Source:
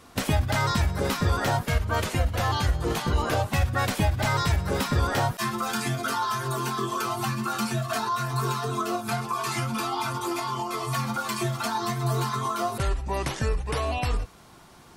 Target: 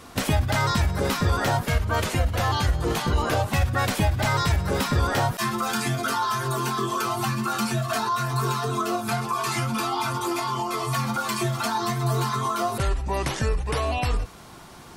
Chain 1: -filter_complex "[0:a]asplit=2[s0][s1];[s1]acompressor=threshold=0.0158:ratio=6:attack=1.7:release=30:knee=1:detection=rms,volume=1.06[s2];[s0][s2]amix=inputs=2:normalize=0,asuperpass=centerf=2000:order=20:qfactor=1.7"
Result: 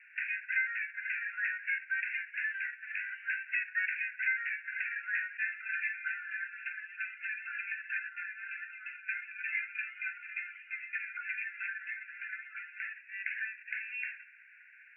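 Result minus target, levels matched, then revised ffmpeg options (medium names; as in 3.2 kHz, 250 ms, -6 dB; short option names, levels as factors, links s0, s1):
2 kHz band +10.0 dB
-filter_complex "[0:a]asplit=2[s0][s1];[s1]acompressor=threshold=0.0158:ratio=6:attack=1.7:release=30:knee=1:detection=rms,volume=1.06[s2];[s0][s2]amix=inputs=2:normalize=0"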